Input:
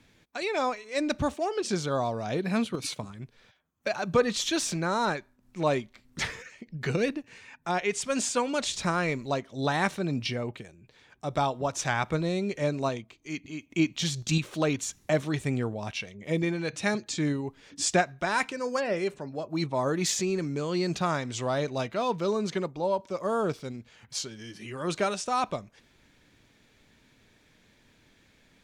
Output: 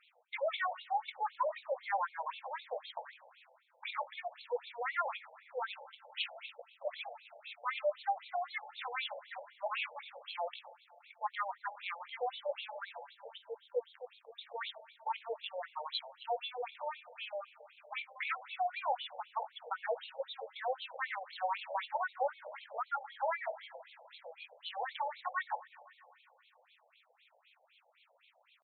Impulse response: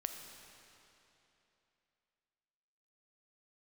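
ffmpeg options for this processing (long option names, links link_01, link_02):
-filter_complex "[0:a]acompressor=threshold=-32dB:ratio=1.5,alimiter=limit=-23.5dB:level=0:latency=1:release=235,asetrate=64194,aresample=44100,atempo=0.686977,asplit=2[link_01][link_02];[1:a]atrim=start_sample=2205,adelay=20[link_03];[link_02][link_03]afir=irnorm=-1:irlink=0,volume=-8.5dB[link_04];[link_01][link_04]amix=inputs=2:normalize=0,afftfilt=real='re*between(b*sr/1024,620*pow(3100/620,0.5+0.5*sin(2*PI*3.9*pts/sr))/1.41,620*pow(3100/620,0.5+0.5*sin(2*PI*3.9*pts/sr))*1.41)':imag='im*between(b*sr/1024,620*pow(3100/620,0.5+0.5*sin(2*PI*3.9*pts/sr))/1.41,620*pow(3100/620,0.5+0.5*sin(2*PI*3.9*pts/sr))*1.41)':win_size=1024:overlap=0.75,volume=2dB"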